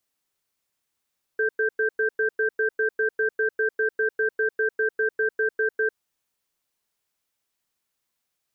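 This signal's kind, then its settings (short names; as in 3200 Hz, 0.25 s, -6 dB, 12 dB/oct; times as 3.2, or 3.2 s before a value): cadence 436 Hz, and 1570 Hz, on 0.10 s, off 0.10 s, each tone -22.5 dBFS 4.55 s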